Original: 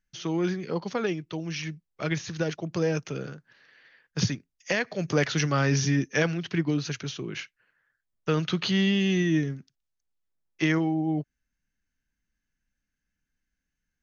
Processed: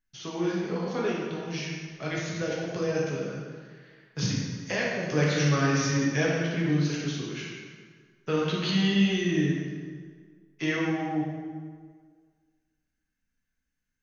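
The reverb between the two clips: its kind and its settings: plate-style reverb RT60 1.7 s, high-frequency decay 0.75×, DRR -5 dB; trim -6 dB

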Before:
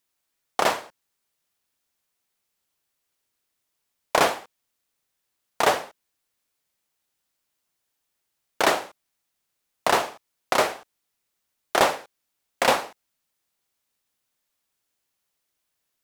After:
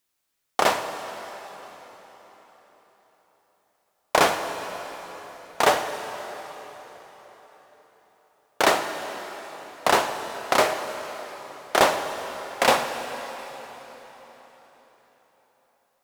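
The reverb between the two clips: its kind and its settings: plate-style reverb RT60 4.6 s, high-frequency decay 0.85×, DRR 7 dB; trim +1 dB

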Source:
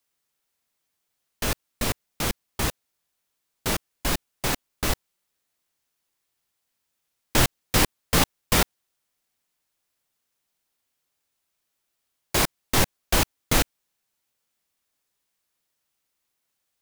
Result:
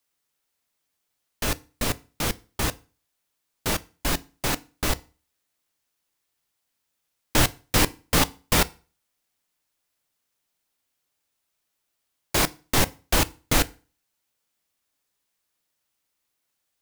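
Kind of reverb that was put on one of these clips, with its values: FDN reverb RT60 0.36 s, low-frequency decay 1.1×, high-frequency decay 0.9×, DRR 15 dB

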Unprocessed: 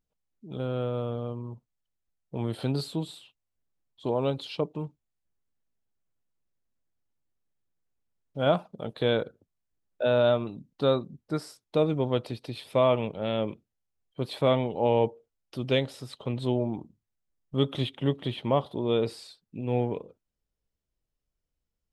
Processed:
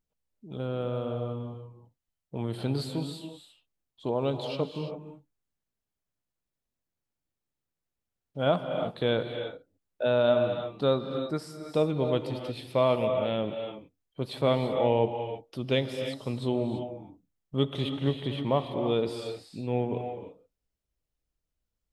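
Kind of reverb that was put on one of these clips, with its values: gated-style reverb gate 360 ms rising, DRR 6 dB; trim -1.5 dB

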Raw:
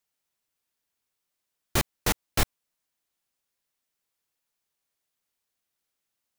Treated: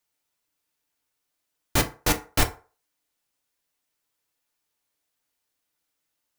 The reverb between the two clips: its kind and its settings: FDN reverb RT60 0.37 s, low-frequency decay 0.75×, high-frequency decay 0.6×, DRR 4 dB; trim +2 dB

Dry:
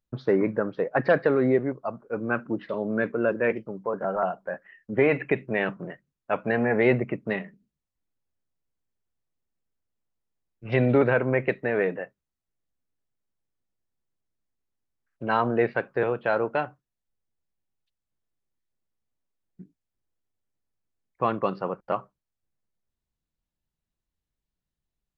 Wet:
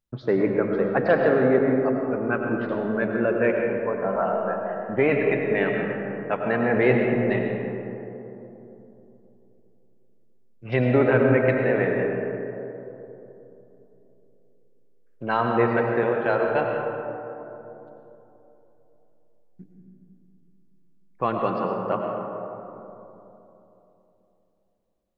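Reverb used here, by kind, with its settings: algorithmic reverb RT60 3.3 s, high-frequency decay 0.3×, pre-delay 60 ms, DRR 1 dB

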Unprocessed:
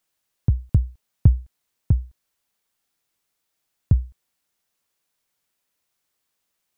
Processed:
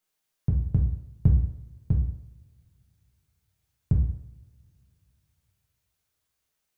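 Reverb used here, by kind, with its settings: two-slope reverb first 0.71 s, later 3 s, from -26 dB, DRR -1.5 dB; trim -6.5 dB

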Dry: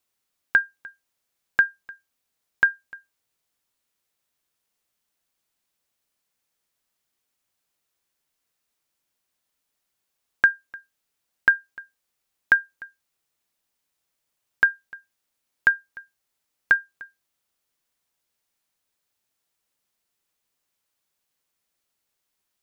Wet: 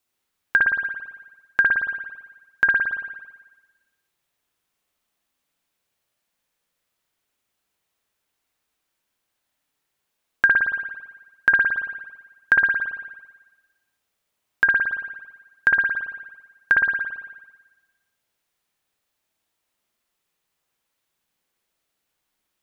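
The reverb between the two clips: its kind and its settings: spring tank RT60 1.2 s, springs 56 ms, chirp 20 ms, DRR -2 dB

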